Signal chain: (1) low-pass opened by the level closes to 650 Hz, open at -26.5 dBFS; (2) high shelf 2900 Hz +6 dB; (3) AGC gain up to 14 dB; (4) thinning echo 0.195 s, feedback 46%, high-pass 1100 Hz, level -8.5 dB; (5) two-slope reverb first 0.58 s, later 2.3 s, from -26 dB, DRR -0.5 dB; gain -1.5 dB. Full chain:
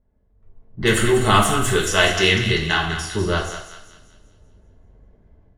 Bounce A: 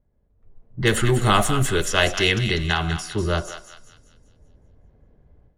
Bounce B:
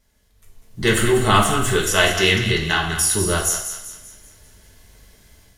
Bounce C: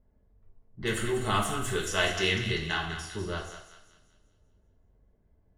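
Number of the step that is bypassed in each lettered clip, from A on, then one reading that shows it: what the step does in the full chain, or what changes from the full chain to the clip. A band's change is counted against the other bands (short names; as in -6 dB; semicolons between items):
5, 125 Hz band +4.0 dB; 1, 8 kHz band +6.5 dB; 3, momentary loudness spread change +1 LU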